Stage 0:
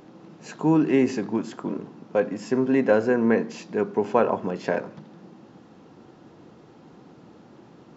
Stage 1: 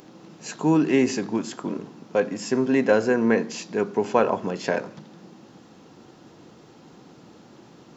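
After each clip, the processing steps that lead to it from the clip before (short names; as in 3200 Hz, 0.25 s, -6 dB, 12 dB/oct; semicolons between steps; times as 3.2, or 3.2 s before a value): high shelf 3500 Hz +12 dB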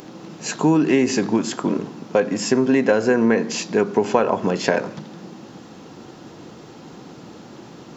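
compressor 4:1, threshold -22 dBFS, peak gain reduction 8.5 dB; gain +8.5 dB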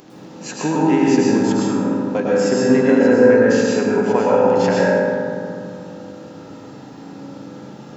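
reverb RT60 2.3 s, pre-delay 0.101 s, DRR -6.5 dB; gain -5 dB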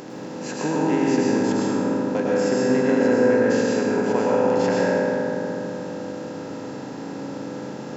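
per-bin compression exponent 0.6; gain -8 dB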